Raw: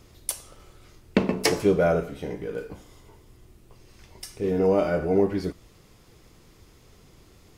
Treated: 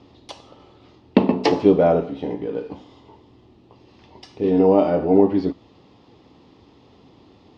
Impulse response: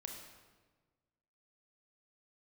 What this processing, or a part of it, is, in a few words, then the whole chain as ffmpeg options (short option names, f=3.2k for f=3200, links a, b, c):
guitar cabinet: -filter_complex "[0:a]highpass=110,equalizer=f=150:t=q:w=4:g=-4,equalizer=f=270:t=q:w=4:g=8,equalizer=f=850:t=q:w=4:g=7,equalizer=f=1.5k:t=q:w=4:g=-10,equalizer=f=2.2k:t=q:w=4:g=-7,lowpass=f=4.1k:w=0.5412,lowpass=f=4.1k:w=1.3066,asplit=3[a][b][c];[a]afade=t=out:st=2.64:d=0.02[d];[b]adynamicequalizer=threshold=0.00562:dfrequency=1900:dqfactor=0.7:tfrequency=1900:tqfactor=0.7:attack=5:release=100:ratio=0.375:range=2:mode=boostabove:tftype=highshelf,afade=t=in:st=2.64:d=0.02,afade=t=out:st=4.62:d=0.02[e];[c]afade=t=in:st=4.62:d=0.02[f];[d][e][f]amix=inputs=3:normalize=0,volume=4.5dB"